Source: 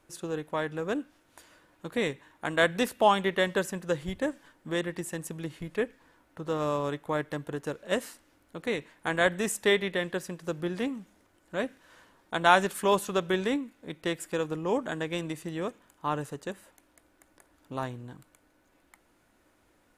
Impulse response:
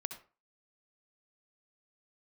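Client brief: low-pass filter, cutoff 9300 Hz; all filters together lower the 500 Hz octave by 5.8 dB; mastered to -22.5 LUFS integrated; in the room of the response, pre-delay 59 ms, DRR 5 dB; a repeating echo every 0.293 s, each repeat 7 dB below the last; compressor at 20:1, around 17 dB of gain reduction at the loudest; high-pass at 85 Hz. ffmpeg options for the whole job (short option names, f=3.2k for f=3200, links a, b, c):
-filter_complex "[0:a]highpass=85,lowpass=9.3k,equalizer=f=500:t=o:g=-7.5,acompressor=threshold=-33dB:ratio=20,aecho=1:1:293|586|879|1172|1465:0.447|0.201|0.0905|0.0407|0.0183,asplit=2[a][b];[1:a]atrim=start_sample=2205,adelay=59[c];[b][c]afir=irnorm=-1:irlink=0,volume=-4.5dB[d];[a][d]amix=inputs=2:normalize=0,volume=16dB"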